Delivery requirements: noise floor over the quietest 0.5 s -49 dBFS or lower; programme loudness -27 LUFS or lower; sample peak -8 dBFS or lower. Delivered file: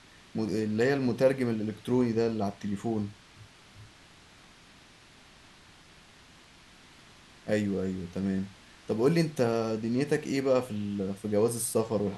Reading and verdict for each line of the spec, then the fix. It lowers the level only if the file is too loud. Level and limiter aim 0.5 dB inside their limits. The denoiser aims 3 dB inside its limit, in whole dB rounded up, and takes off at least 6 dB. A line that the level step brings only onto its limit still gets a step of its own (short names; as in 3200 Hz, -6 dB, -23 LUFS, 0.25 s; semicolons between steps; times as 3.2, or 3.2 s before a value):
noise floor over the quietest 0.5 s -55 dBFS: OK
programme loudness -29.5 LUFS: OK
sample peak -12.5 dBFS: OK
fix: none